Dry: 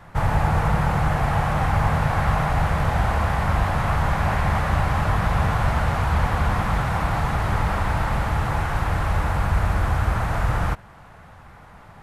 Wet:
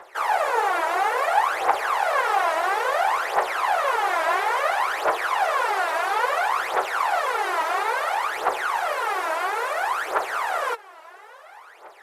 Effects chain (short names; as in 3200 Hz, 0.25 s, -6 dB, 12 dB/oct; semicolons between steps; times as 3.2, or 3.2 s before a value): steep high-pass 360 Hz 72 dB/oct; phaser 0.59 Hz, delay 3.2 ms, feedback 75%